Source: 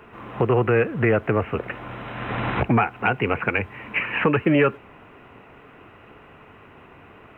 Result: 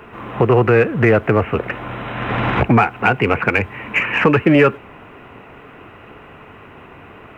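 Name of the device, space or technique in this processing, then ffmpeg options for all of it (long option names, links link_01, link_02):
parallel distortion: -filter_complex "[0:a]asplit=2[link_01][link_02];[link_02]asoftclip=type=hard:threshold=-23dB,volume=-13.5dB[link_03];[link_01][link_03]amix=inputs=2:normalize=0,volume=5.5dB"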